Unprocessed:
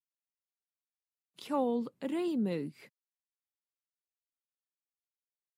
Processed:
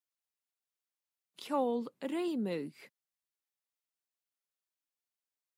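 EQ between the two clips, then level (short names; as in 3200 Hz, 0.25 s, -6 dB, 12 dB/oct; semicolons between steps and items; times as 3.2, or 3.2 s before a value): HPF 310 Hz 6 dB/oct; +1.0 dB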